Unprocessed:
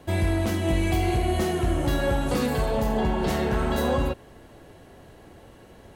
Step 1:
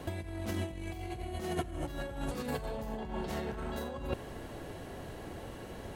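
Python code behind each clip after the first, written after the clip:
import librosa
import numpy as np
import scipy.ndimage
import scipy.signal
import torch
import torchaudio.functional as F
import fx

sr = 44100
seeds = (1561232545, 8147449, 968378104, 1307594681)

y = fx.over_compress(x, sr, threshold_db=-30.0, ratio=-0.5)
y = F.gain(torch.from_numpy(y), -4.5).numpy()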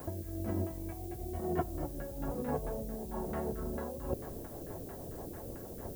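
y = fx.filter_lfo_lowpass(x, sr, shape='saw_down', hz=4.5, low_hz=430.0, high_hz=1500.0, q=1.2)
y = fx.rotary_switch(y, sr, hz=1.1, then_hz=6.3, switch_at_s=3.37)
y = fx.dmg_noise_colour(y, sr, seeds[0], colour='violet', level_db=-54.0)
y = F.gain(torch.from_numpy(y), 1.0).numpy()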